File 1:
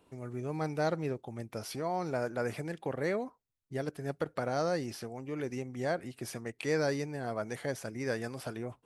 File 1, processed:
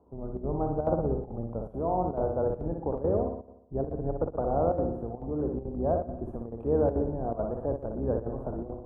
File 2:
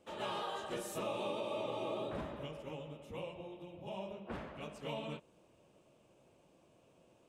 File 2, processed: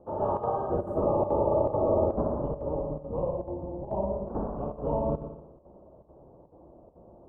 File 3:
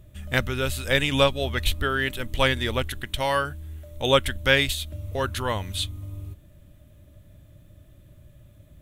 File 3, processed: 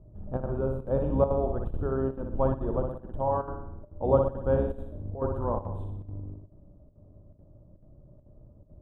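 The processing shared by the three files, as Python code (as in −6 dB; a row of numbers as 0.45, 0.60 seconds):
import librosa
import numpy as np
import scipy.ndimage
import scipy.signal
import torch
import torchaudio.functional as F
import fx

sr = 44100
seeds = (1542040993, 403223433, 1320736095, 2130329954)

y = fx.octave_divider(x, sr, octaves=2, level_db=1.0)
y = scipy.signal.sosfilt(scipy.signal.cheby2(4, 40, 1900.0, 'lowpass', fs=sr, output='sos'), y)
y = fx.low_shelf(y, sr, hz=200.0, db=-5.5)
y = fx.room_flutter(y, sr, wall_m=10.3, rt60_s=0.75)
y = fx.chopper(y, sr, hz=2.3, depth_pct=65, duty_pct=85)
y = y * 10.0 ** (-30 / 20.0) / np.sqrt(np.mean(np.square(y)))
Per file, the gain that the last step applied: +5.5, +13.5, −1.5 decibels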